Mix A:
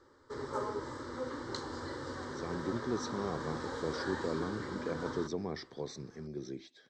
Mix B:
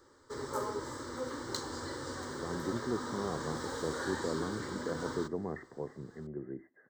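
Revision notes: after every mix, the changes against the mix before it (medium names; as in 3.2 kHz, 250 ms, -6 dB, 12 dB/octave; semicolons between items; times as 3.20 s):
speech: add brick-wall FIR low-pass 2.1 kHz; master: remove distance through air 110 m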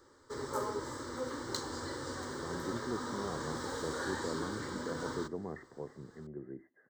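speech -3.5 dB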